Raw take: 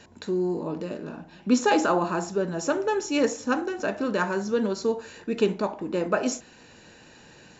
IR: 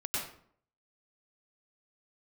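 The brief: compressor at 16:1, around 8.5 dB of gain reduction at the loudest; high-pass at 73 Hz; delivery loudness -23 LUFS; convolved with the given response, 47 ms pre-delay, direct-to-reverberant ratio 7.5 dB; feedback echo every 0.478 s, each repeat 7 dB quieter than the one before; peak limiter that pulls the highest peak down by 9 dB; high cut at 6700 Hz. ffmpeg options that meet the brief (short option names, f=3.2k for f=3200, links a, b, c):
-filter_complex "[0:a]highpass=73,lowpass=6.7k,acompressor=threshold=-24dB:ratio=16,alimiter=level_in=0.5dB:limit=-24dB:level=0:latency=1,volume=-0.5dB,aecho=1:1:478|956|1434|1912|2390:0.447|0.201|0.0905|0.0407|0.0183,asplit=2[a][b];[1:a]atrim=start_sample=2205,adelay=47[c];[b][c]afir=irnorm=-1:irlink=0,volume=-12.5dB[d];[a][d]amix=inputs=2:normalize=0,volume=9.5dB"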